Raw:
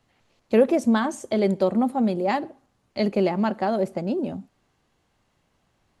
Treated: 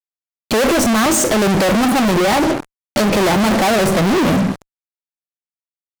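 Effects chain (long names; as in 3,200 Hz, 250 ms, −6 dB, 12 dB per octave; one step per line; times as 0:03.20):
0:02.25–0:03.12: downward compressor, threshold −27 dBFS, peak gain reduction 9 dB
harmonic generator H 5 −9 dB, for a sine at −7.5 dBFS
soft clipping −18 dBFS, distortion −12 dB
rectangular room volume 240 cubic metres, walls furnished, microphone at 0.53 metres
fuzz pedal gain 44 dB, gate −44 dBFS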